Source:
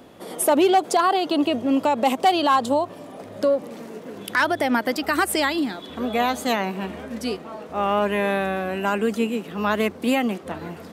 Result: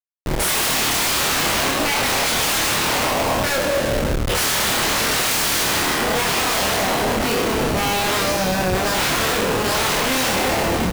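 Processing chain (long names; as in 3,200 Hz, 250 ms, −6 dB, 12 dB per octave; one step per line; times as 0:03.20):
peak hold with a decay on every bin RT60 2.65 s
meter weighting curve A
noise gate with hold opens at −29 dBFS
0:08.98–0:09.38: parametric band 510 Hz +11.5 dB → +5 dB 1.6 octaves
wrap-around overflow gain 16.5 dB
pitch vibrato 4.1 Hz 39 cents
comparator with hysteresis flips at −28 dBFS
double-tracking delay 27 ms −3 dB
level +2 dB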